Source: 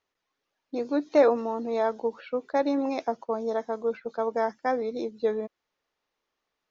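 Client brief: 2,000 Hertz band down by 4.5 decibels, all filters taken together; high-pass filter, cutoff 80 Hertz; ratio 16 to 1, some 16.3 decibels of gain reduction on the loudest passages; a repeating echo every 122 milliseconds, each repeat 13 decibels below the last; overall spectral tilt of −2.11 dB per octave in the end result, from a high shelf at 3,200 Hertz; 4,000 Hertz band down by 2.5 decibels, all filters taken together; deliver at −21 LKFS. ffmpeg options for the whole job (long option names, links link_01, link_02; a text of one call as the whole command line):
ffmpeg -i in.wav -af "highpass=80,equalizer=frequency=2000:width_type=o:gain=-6.5,highshelf=frequency=3200:gain=6.5,equalizer=frequency=4000:width_type=o:gain=-6,acompressor=threshold=-30dB:ratio=16,aecho=1:1:122|244|366:0.224|0.0493|0.0108,volume=15dB" out.wav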